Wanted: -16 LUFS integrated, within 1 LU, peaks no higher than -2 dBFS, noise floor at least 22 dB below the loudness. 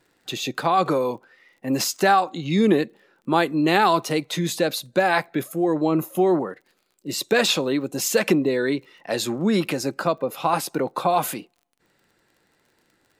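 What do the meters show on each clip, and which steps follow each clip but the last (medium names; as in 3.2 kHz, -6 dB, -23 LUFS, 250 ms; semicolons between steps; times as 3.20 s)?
tick rate 31 per s; loudness -22.5 LUFS; peak level -5.5 dBFS; loudness target -16.0 LUFS
-> de-click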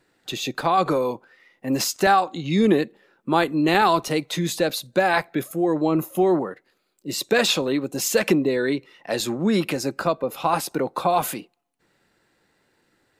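tick rate 0.076 per s; loudness -22.5 LUFS; peak level -5.5 dBFS; loudness target -16.0 LUFS
-> trim +6.5 dB; peak limiter -2 dBFS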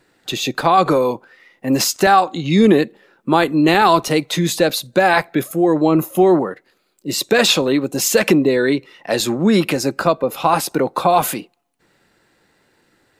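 loudness -16.5 LUFS; peak level -2.0 dBFS; noise floor -62 dBFS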